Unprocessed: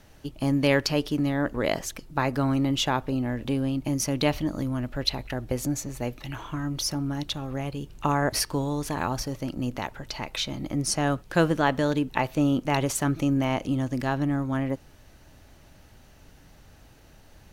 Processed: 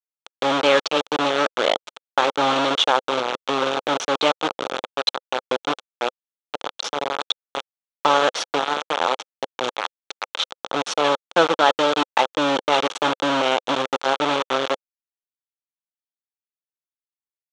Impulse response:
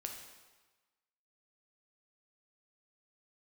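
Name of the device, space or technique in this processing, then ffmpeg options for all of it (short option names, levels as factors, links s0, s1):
hand-held game console: -af "acrusher=bits=3:mix=0:aa=0.000001,highpass=410,equalizer=f=520:t=q:w=4:g=5,equalizer=f=850:t=q:w=4:g=4,equalizer=f=1300:t=q:w=4:g=6,equalizer=f=1900:t=q:w=4:g=-5,equalizer=f=3400:t=q:w=4:g=7,equalizer=f=4900:t=q:w=4:g=-8,lowpass=f=5700:w=0.5412,lowpass=f=5700:w=1.3066,volume=1.68"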